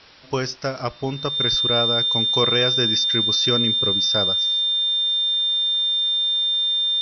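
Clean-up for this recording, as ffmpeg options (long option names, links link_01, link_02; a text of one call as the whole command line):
ffmpeg -i in.wav -af "bandreject=frequency=3600:width=30,afwtdn=0.0063" out.wav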